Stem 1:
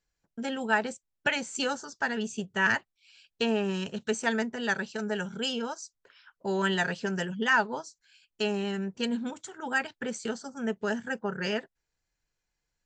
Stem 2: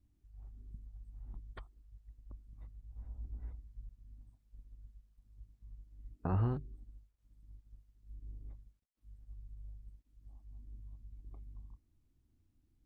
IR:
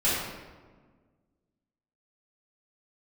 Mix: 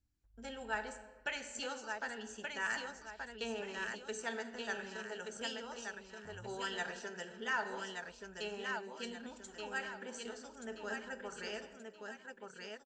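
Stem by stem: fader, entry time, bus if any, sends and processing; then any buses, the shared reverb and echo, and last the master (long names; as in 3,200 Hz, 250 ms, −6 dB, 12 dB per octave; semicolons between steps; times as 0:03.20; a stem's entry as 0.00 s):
−13.0 dB, 0.00 s, send −19.5 dB, echo send −3.5 dB, bass and treble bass −12 dB, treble +3 dB
0:00.89 −11 dB → 0:01.15 −22.5 dB, 0.00 s, no send, no echo send, no processing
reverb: on, RT60 1.5 s, pre-delay 3 ms
echo: repeating echo 1,177 ms, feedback 39%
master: no processing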